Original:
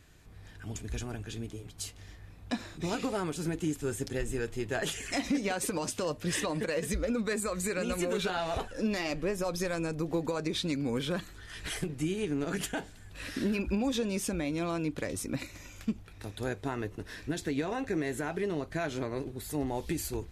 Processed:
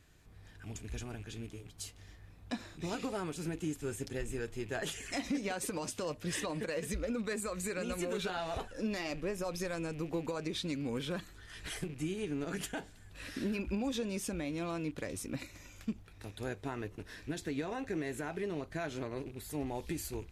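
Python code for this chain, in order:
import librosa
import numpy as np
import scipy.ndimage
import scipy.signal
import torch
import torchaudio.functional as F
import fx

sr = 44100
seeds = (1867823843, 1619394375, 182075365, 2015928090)

y = fx.rattle_buzz(x, sr, strikes_db=-40.0, level_db=-42.0)
y = y * librosa.db_to_amplitude(-5.0)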